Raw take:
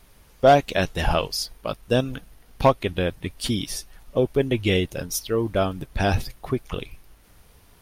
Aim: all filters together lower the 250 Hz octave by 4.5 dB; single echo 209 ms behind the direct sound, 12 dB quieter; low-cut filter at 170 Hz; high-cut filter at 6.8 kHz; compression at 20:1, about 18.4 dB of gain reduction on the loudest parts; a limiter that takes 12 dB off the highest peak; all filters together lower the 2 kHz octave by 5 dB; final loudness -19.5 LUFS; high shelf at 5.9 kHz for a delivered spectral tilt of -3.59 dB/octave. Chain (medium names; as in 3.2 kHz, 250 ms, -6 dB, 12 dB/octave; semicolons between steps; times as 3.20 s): high-pass 170 Hz; low-pass 6.8 kHz; peaking EQ 250 Hz -4.5 dB; peaking EQ 2 kHz -7.5 dB; treble shelf 5.9 kHz +4.5 dB; compression 20:1, threshold -29 dBFS; peak limiter -26.5 dBFS; delay 209 ms -12 dB; trim +19.5 dB